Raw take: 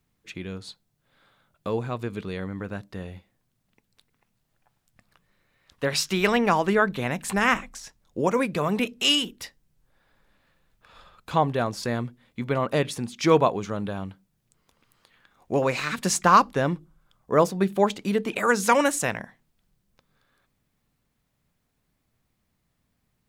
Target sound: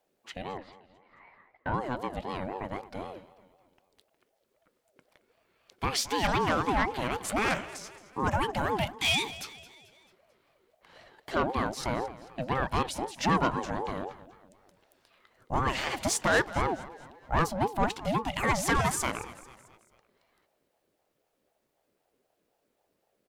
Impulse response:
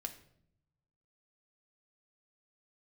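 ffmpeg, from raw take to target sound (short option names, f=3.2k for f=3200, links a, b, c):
-filter_complex "[0:a]asettb=1/sr,asplit=3[a][b][c];[a]atrim=end=0.574[d];[b]atrim=start=0.57:end=1.74,asetpts=PTS-STARTPTS,afade=t=in:d=0.004:c=qsin,afade=t=out:st=1.166:d=0.004:c=qsin,lowpass=f=1.6k:t=q:w=5.2[e];[c]atrim=start=1.736[f];[d][e]acrossfade=d=0.004:c1=hsin:c2=qsin[g];[g][f]acrossfade=d=0.004:c1=qsin:c2=hsin,asoftclip=type=tanh:threshold=-16.5dB,aecho=1:1:220|440|660|880:0.141|0.0678|0.0325|0.0156,aeval=exprs='val(0)*sin(2*PI*520*n/s+520*0.3/3.9*sin(2*PI*3.9*n/s))':c=same"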